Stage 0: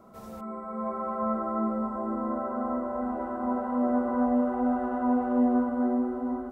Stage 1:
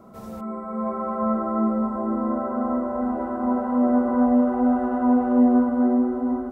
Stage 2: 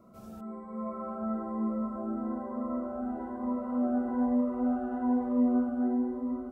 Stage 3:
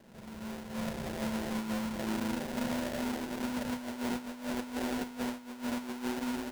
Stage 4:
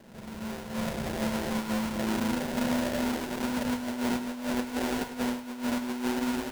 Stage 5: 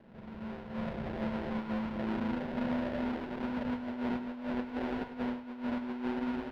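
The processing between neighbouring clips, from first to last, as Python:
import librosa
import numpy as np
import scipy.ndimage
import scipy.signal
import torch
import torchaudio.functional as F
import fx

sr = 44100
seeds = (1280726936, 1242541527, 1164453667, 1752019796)

y1 = fx.peak_eq(x, sr, hz=160.0, db=4.5, octaves=3.0)
y1 = y1 * 10.0 ** (3.0 / 20.0)
y2 = fx.notch_cascade(y1, sr, direction='rising', hz=1.1)
y2 = y2 * 10.0 ** (-8.5 / 20.0)
y3 = fx.over_compress(y2, sr, threshold_db=-32.0, ratio=-0.5)
y3 = fx.sample_hold(y3, sr, seeds[0], rate_hz=1200.0, jitter_pct=20)
y3 = y3 * 10.0 ** (-2.5 / 20.0)
y4 = y3 + 10.0 ** (-11.5 / 20.0) * np.pad(y3, (int(102 * sr / 1000.0), 0))[:len(y3)]
y4 = y4 * 10.0 ** (5.0 / 20.0)
y5 = fx.air_absorb(y4, sr, metres=360.0)
y5 = y5 * 10.0 ** (-4.0 / 20.0)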